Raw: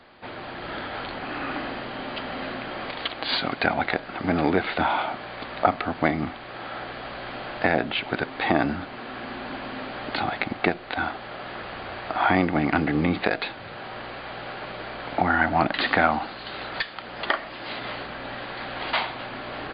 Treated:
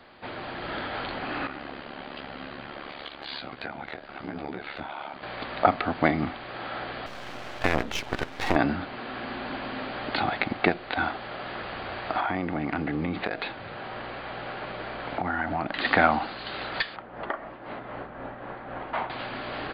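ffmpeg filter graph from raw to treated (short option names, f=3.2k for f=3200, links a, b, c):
-filter_complex "[0:a]asettb=1/sr,asplit=3[a][b][c];[a]atrim=end=1.474[d];[b]atrim=start=1.47:end=5.23,asetpts=PTS-STARTPTS,afade=t=in:d=0.004:c=qsin,afade=t=out:st=3.756:d=0.004:c=qsin,acompressor=threshold=-28dB:ratio=2.5:attack=3.2:release=140:knee=1:detection=peak,flanger=delay=15.5:depth=6.6:speed=1,tremolo=f=71:d=0.788[e];[c]atrim=start=5.226[f];[d][e]acrossfade=d=0.004:c1=hsin:c2=qsin[g];[g][f]acrossfade=d=0.004:c1=qsin:c2=hsin,asettb=1/sr,asplit=3[h][i][j];[h]atrim=end=7.064[k];[i]atrim=start=7.06:end=8.56,asetpts=PTS-STARTPTS,afade=t=in:d=0.004:c=qsin,afade=t=out:st=1.496:d=0.004:c=qsin,highpass=59,aeval=exprs='max(val(0),0)':c=same[l];[j]atrim=start=8.556[m];[k][l]acrossfade=d=0.004:c1=hsin:c2=qsin[n];[n][m]acrossfade=d=0.004:c1=qsin:c2=hsin,asettb=1/sr,asplit=3[o][p][q];[o]atrim=end=12.204[r];[p]atrim=start=12.2:end=15.85,asetpts=PTS-STARTPTS,afade=t=in:d=0.004:c=qsin,afade=t=out:st=3.646:d=0.004:c=qsin,lowpass=f=3.5k:p=1,acompressor=threshold=-26dB:ratio=3:attack=3.2:release=140:knee=1:detection=peak[s];[q]atrim=start=15.846[t];[r][s]acrossfade=d=0.004:c1=hsin:c2=qsin[u];[u][t]acrossfade=d=0.004:c1=qsin:c2=hsin,asettb=1/sr,asplit=3[v][w][x];[v]atrim=end=16.964[y];[w]atrim=start=16.96:end=19.1,asetpts=PTS-STARTPTS,afade=t=in:d=0.004:c=qsin,afade=t=out:st=2.136:d=0.004:c=qsin,lowpass=1.3k,tremolo=f=3.9:d=0.46[z];[x]atrim=start=19.096[aa];[y][z]acrossfade=d=0.004:c1=hsin:c2=qsin[ab];[ab][aa]acrossfade=d=0.004:c1=qsin:c2=hsin"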